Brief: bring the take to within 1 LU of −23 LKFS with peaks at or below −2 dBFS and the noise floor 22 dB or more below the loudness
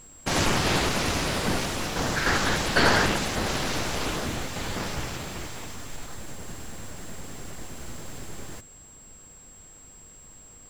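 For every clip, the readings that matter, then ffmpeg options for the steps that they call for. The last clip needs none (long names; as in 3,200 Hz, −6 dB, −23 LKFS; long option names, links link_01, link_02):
interfering tone 7,600 Hz; level of the tone −48 dBFS; integrated loudness −26.0 LKFS; sample peak −7.0 dBFS; target loudness −23.0 LKFS
→ -af "bandreject=frequency=7600:width=30"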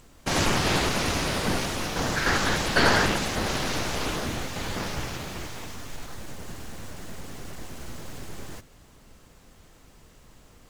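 interfering tone none found; integrated loudness −26.0 LKFS; sample peak −7.0 dBFS; target loudness −23.0 LKFS
→ -af "volume=3dB"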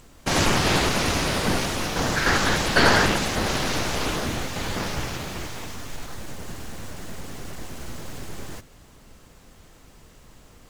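integrated loudness −23.0 LKFS; sample peak −4.0 dBFS; background noise floor −51 dBFS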